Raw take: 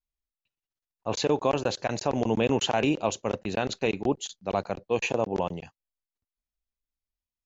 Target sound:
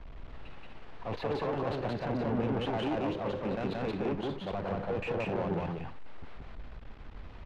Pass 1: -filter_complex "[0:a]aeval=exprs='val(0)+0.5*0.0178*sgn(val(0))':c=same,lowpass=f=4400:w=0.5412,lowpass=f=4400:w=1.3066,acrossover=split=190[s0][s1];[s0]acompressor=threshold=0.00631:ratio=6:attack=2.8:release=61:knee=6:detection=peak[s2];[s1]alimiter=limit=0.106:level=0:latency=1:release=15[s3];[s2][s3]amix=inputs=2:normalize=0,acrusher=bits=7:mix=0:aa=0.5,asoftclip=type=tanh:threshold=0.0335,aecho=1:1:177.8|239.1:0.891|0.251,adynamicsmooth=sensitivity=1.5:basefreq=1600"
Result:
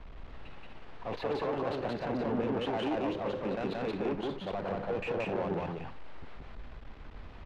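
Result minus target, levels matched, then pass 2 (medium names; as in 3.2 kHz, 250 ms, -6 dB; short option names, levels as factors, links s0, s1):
compression: peak gain reduction +13.5 dB
-filter_complex "[0:a]aeval=exprs='val(0)+0.5*0.0178*sgn(val(0))':c=same,lowpass=f=4400:w=0.5412,lowpass=f=4400:w=1.3066,acrossover=split=190[s0][s1];[s1]alimiter=limit=0.106:level=0:latency=1:release=15[s2];[s0][s2]amix=inputs=2:normalize=0,acrusher=bits=7:mix=0:aa=0.5,asoftclip=type=tanh:threshold=0.0335,aecho=1:1:177.8|239.1:0.891|0.251,adynamicsmooth=sensitivity=1.5:basefreq=1600"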